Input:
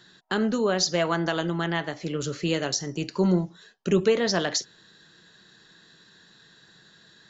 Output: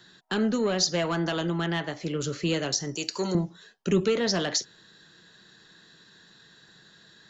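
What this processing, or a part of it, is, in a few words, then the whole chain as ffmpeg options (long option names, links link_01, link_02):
one-band saturation: -filter_complex "[0:a]acrossover=split=350|2400[link_01][link_02][link_03];[link_02]asoftclip=type=tanh:threshold=-25.5dB[link_04];[link_01][link_04][link_03]amix=inputs=3:normalize=0,asettb=1/sr,asplit=3[link_05][link_06][link_07];[link_05]atrim=end=2.954[link_08];[link_06]atrim=start=2.95:end=3.35,asetpts=PTS-STARTPTS,afade=type=in:duration=0.004:curve=qsin,afade=type=out:start_time=0.396:duration=0.004:curve=qsin,bass=frequency=250:gain=-15,treble=frequency=4000:gain=14[link_09];[link_07]atrim=start=3.346[link_10];[link_08][link_09]acrossfade=duration=0.004:curve1=hsin:curve2=qsin[link_11];[link_11][link_10]acrossfade=duration=0.004:curve1=qsin:curve2=hsin"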